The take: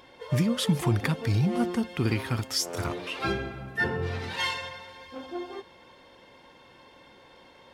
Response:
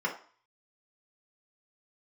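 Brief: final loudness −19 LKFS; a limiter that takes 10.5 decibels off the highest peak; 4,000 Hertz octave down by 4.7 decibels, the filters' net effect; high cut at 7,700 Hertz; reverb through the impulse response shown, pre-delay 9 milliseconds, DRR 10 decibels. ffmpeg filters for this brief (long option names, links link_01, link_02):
-filter_complex "[0:a]lowpass=7700,equalizer=frequency=4000:width_type=o:gain=-6,alimiter=limit=-23dB:level=0:latency=1,asplit=2[link_01][link_02];[1:a]atrim=start_sample=2205,adelay=9[link_03];[link_02][link_03]afir=irnorm=-1:irlink=0,volume=-18dB[link_04];[link_01][link_04]amix=inputs=2:normalize=0,volume=14.5dB"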